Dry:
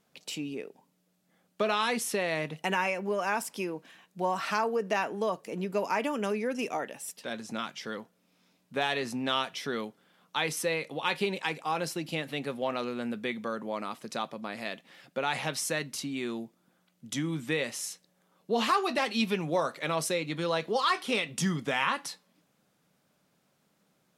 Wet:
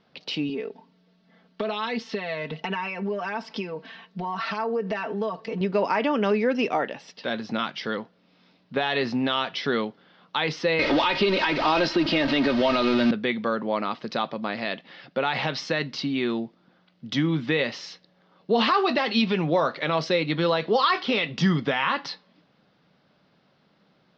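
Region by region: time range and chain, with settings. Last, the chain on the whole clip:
0:00.49–0:05.61: downward compressor 4 to 1, threshold −38 dBFS + comb filter 4.5 ms, depth 82%
0:10.79–0:13.11: converter with a step at zero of −33.5 dBFS + comb filter 3.2 ms, depth 57% + multiband upward and downward compressor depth 100%
whole clip: brickwall limiter −20.5 dBFS; Butterworth low-pass 5,000 Hz 48 dB per octave; notch filter 2,400 Hz, Q 23; level +8.5 dB

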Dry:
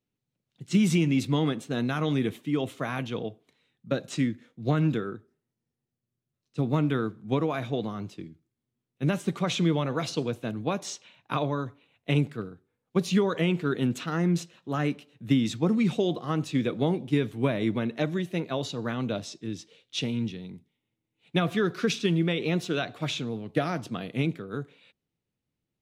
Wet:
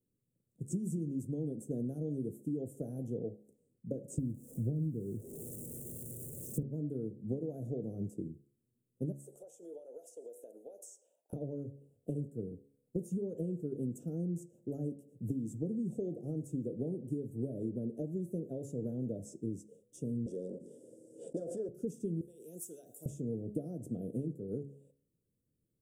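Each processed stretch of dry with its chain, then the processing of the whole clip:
0:04.18–0:06.63: spike at every zero crossing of −21 dBFS + spectral tilt −4.5 dB per octave
0:09.12–0:11.33: high-pass filter 550 Hz 24 dB per octave + downward compressor 12 to 1, threshold −42 dBFS
0:20.26–0:21.69: leveller curve on the samples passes 3 + loudspeaker in its box 490–7,900 Hz, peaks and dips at 530 Hz +8 dB, 800 Hz −10 dB, 1,600 Hz +6 dB, 2,600 Hz −8 dB, 4,700 Hz +6 dB, 6,700 Hz −5 dB + background raised ahead of every attack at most 42 dB per second
0:22.21–0:23.06: first difference + envelope flattener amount 50%
whole clip: downward compressor 10 to 1, threshold −35 dBFS; elliptic band-stop filter 510–8,100 Hz, stop band 40 dB; hum removal 69.82 Hz, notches 14; level +3 dB

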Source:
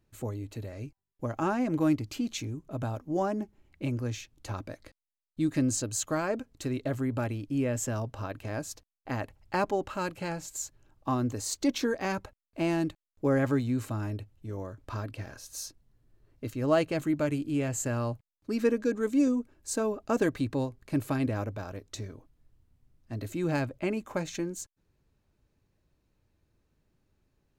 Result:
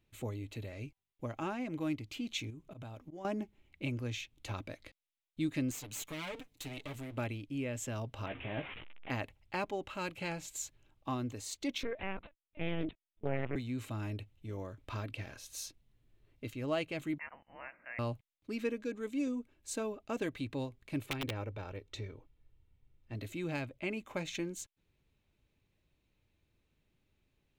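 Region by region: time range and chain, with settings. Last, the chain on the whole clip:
0:02.50–0:03.25: volume swells 136 ms + downward compressor, threshold −39 dBFS
0:05.71–0:07.18: lower of the sound and its delayed copy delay 6.8 ms + high-shelf EQ 3,600 Hz +8 dB + downward compressor 2 to 1, threshold −41 dBFS
0:08.26–0:09.10: linear delta modulator 16 kbit/s, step −40 dBFS + double-tracking delay 15 ms −6.5 dB
0:11.83–0:13.56: low-shelf EQ 250 Hz +2.5 dB + linear-prediction vocoder at 8 kHz pitch kept + highs frequency-modulated by the lows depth 0.47 ms
0:17.18–0:17.99: high-pass filter 1,300 Hz 24 dB per octave + voice inversion scrambler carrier 3,300 Hz
0:21.06–0:23.15: high-shelf EQ 4,500 Hz −11.5 dB + comb filter 2.2 ms, depth 38% + wrap-around overflow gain 22 dB
whole clip: flat-topped bell 2,800 Hz +8.5 dB 1.1 octaves; speech leveller within 3 dB 0.5 s; level −7.5 dB

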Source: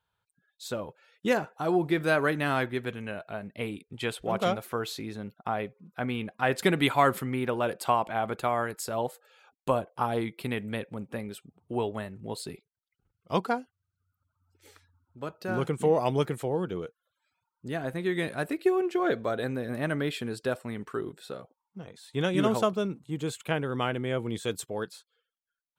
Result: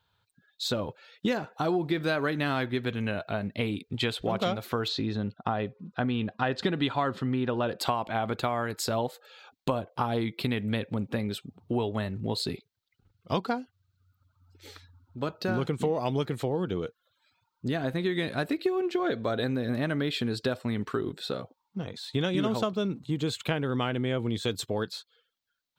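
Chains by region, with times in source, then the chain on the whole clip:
0:04.88–0:07.79: high-frequency loss of the air 95 metres + notch filter 2,200 Hz, Q 6.6
whole clip: graphic EQ with 15 bands 100 Hz +6 dB, 250 Hz +4 dB, 4,000 Hz +8 dB, 10,000 Hz −8 dB; downward compressor 4 to 1, threshold −32 dBFS; level +6 dB

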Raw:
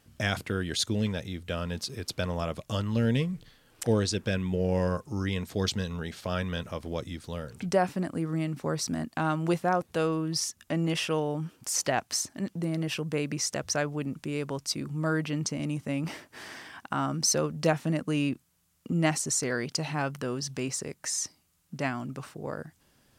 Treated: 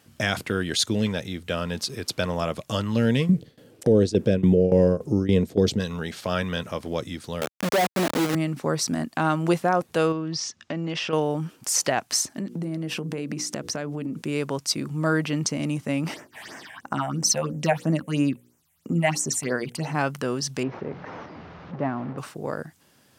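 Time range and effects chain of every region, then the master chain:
0:03.29–0:05.80: low shelf with overshoot 700 Hz +11.5 dB, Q 1.5 + shaped tremolo saw down 3.5 Hz, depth 90%
0:07.41–0:08.35: resonant band-pass 610 Hz, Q 0.75 + log-companded quantiser 2 bits
0:10.12–0:11.13: low-pass filter 5,900 Hz 24 dB per octave + downward compressor 4 to 1, threshold −31 dBFS
0:12.37–0:14.22: parametric band 240 Hz +8.5 dB 1.8 octaves + mains-hum notches 60/120/180/240/300/360/420/480 Hz + downward compressor 10 to 1, threshold −31 dBFS
0:16.14–0:19.95: mains-hum notches 60/120/180/240/300/360/420/480/540 Hz + all-pass phaser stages 6, 3 Hz, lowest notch 310–4,200 Hz
0:20.63–0:22.18: linear delta modulator 32 kbit/s, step −35 dBFS + low-pass filter 1,100 Hz
whole clip: high-pass filter 95 Hz; low-shelf EQ 140 Hz −3.5 dB; boost into a limiter +14.5 dB; level −8.5 dB

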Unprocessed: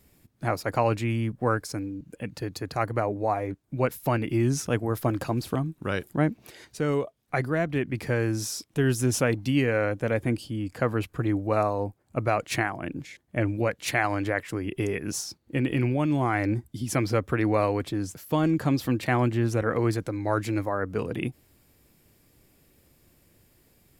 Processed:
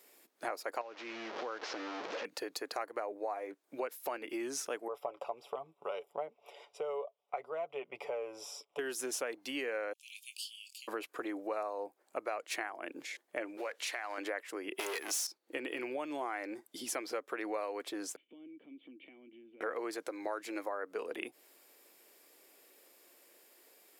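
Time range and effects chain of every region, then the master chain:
0:00.81–0:02.25: linear delta modulator 32 kbit/s, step −29.5 dBFS + low-pass filter 2,500 Hz 6 dB per octave + downward compressor 5 to 1, threshold −30 dBFS
0:04.88–0:08.79: Savitzky-Golay smoothing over 25 samples + phaser with its sweep stopped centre 700 Hz, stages 4 + comb filter 7 ms, depth 45%
0:09.93–0:10.88: Butterworth high-pass 2,600 Hz 96 dB per octave + double-tracking delay 21 ms −10 dB
0:13.57–0:14.18: mu-law and A-law mismatch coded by mu + meter weighting curve A + downward compressor 3 to 1, threshold −30 dBFS
0:14.79–0:15.27: hard clipping −30.5 dBFS + spectral tilt +3 dB per octave + leveller curve on the samples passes 2
0:18.16–0:19.61: downward compressor 10 to 1, threshold −34 dBFS + formant resonators in series i
whole clip: high-pass filter 390 Hz 24 dB per octave; downward compressor 4 to 1, threshold −39 dBFS; level +2 dB

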